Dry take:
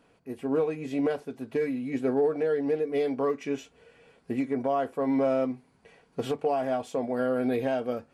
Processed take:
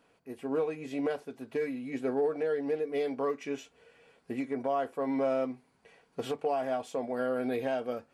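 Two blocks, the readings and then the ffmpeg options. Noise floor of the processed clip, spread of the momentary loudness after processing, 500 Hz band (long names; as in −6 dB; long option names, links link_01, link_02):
−69 dBFS, 9 LU, −4.0 dB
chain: -af "lowshelf=frequency=290:gain=-7,volume=-2dB"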